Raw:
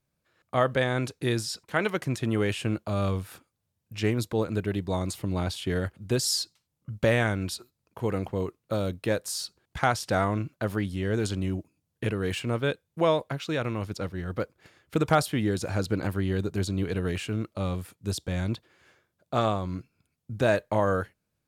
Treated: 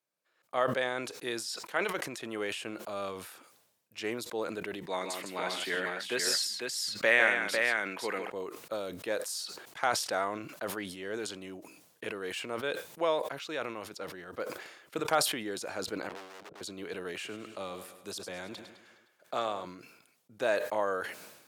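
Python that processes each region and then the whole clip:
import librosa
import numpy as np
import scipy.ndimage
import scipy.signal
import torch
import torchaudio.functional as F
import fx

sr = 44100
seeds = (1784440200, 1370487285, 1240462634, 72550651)

y = fx.chain(x, sr, fx.highpass(hz=130.0, slope=24),
    fx.peak_eq(hz=2000.0, db=10.5, octaves=1.2),
    fx.echo_multitap(ms=(126, 156, 499), db=(-16.5, -7.0, -4.5)), at=(4.83, 8.3))
y = fx.chain(y, sr, fx.lowpass_res(hz=510.0, q=2.5),
    fx.overload_stage(gain_db=30.0),
    fx.spectral_comp(ratio=2.0), at=(16.09, 16.61))
y = fx.chain(y, sr, fx.echo_feedback(ms=103, feedback_pct=55, wet_db=-14.5),
    fx.band_squash(depth_pct=40), at=(17.14, 19.65))
y = scipy.signal.sosfilt(scipy.signal.butter(2, 430.0, 'highpass', fs=sr, output='sos'), y)
y = fx.sustainer(y, sr, db_per_s=59.0)
y = y * librosa.db_to_amplitude(-4.5)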